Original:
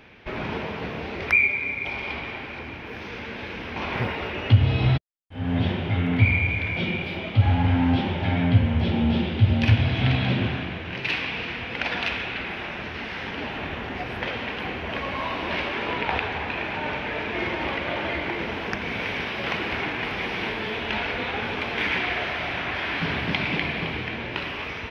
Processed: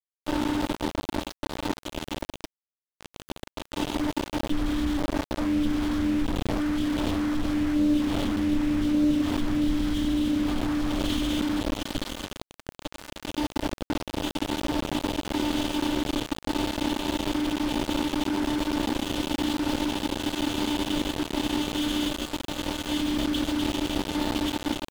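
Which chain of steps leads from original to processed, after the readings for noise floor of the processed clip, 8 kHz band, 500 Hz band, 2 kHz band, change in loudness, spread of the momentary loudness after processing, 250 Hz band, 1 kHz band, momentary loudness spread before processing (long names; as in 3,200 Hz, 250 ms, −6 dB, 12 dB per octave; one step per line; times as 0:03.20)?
below −85 dBFS, can't be measured, −1.5 dB, −11.5 dB, −2.5 dB, 9 LU, +4.5 dB, −3.0 dB, 11 LU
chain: phases set to zero 297 Hz
single-tap delay 478 ms −13.5 dB
brick-wall band-stop 400–3,000 Hz
parametric band 3,800 Hz −6 dB 0.21 octaves
notch comb filter 170 Hz
on a send: repeating echo 1,135 ms, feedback 39%, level −6 dB
on the sum: bit reduction 6 bits
high-shelf EQ 2,900 Hz −11.5 dB
in parallel at +3 dB: compressor whose output falls as the input rises −38 dBFS, ratio −1
on the sum: highs frequency-modulated by the lows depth 0.2 ms
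level +2.5 dB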